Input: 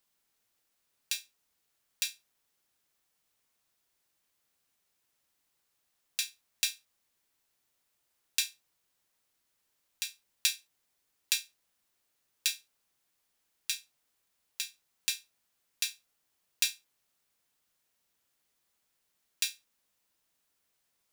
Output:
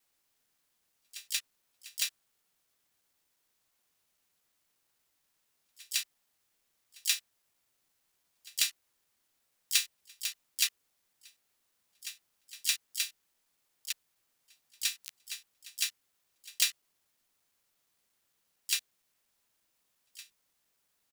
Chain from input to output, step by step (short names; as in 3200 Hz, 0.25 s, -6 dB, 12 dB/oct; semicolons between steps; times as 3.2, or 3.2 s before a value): slices in reverse order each 0.116 s, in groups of 7; harmoniser -5 st -10 dB, +3 st -7 dB, +12 st -9 dB